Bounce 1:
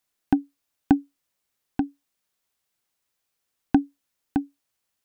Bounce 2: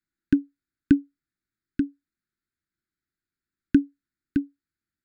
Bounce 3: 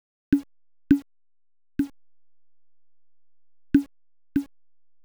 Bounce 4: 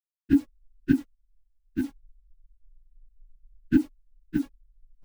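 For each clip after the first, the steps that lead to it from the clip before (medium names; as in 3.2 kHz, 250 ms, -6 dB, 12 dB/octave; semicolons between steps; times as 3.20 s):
local Wiener filter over 15 samples; elliptic band-stop 350–1400 Hz; trim +1.5 dB
send-on-delta sampling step -41.5 dBFS
phase randomisation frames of 50 ms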